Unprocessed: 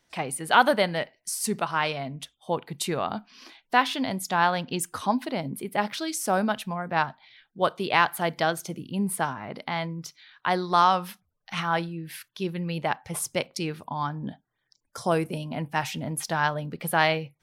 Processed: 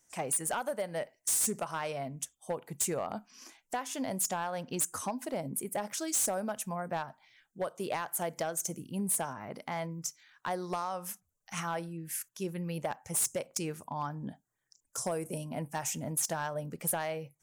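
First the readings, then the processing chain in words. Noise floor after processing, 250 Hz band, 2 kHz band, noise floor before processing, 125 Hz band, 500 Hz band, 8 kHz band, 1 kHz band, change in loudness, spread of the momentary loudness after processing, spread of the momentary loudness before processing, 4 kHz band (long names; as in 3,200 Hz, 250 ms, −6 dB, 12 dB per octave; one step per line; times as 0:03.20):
−80 dBFS, −8.5 dB, −14.5 dB, −77 dBFS, −8.0 dB, −7.0 dB, +3.0 dB, −12.0 dB, −7.5 dB, 10 LU, 12 LU, −12.5 dB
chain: dynamic equaliser 560 Hz, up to +7 dB, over −39 dBFS, Q 2
downward compressor 20 to 1, threshold −23 dBFS, peak gain reduction 14 dB
high shelf with overshoot 5,300 Hz +10.5 dB, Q 3
gain into a clipping stage and back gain 20.5 dB
level −6 dB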